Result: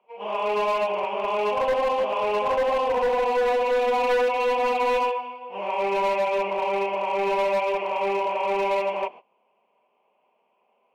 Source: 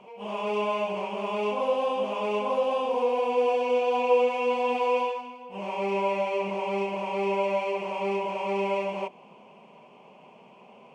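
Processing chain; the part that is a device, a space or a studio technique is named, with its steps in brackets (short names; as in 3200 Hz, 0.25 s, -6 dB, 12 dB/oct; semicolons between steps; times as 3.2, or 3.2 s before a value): walkie-talkie (BPF 440–2800 Hz; hard clip -25.5 dBFS, distortion -12 dB; gate -46 dBFS, range -21 dB); gain +6.5 dB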